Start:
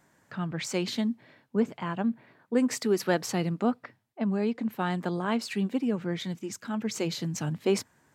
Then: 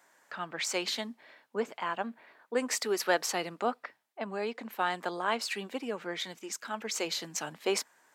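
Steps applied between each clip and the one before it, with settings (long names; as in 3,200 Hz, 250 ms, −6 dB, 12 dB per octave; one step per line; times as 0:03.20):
high-pass filter 570 Hz 12 dB per octave
level +2.5 dB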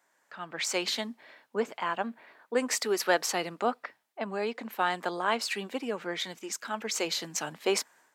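automatic gain control gain up to 9.5 dB
level −7 dB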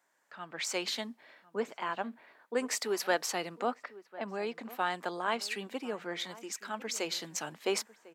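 slap from a distant wall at 180 metres, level −18 dB
level −4 dB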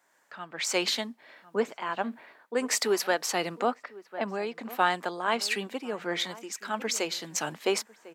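shaped tremolo triangle 1.5 Hz, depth 55%
level +8 dB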